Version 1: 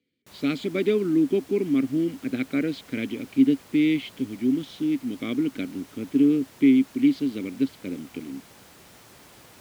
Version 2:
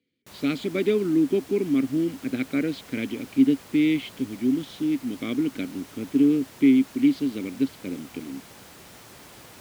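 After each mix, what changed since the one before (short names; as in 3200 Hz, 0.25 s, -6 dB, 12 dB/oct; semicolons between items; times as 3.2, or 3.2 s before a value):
background +3.5 dB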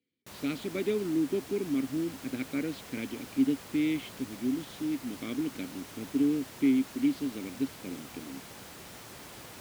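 speech -7.5 dB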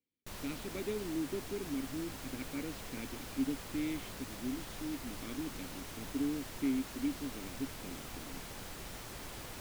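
speech -8.5 dB; master: remove HPF 100 Hz 12 dB/oct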